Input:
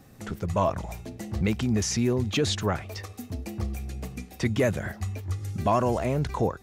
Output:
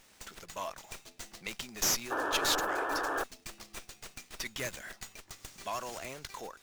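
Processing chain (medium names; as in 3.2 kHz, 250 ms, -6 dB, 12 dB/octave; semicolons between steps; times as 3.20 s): high-pass 140 Hz; differentiator; painted sound noise, 2.10–3.24 s, 270–1800 Hz -38 dBFS; sliding maximum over 3 samples; trim +5 dB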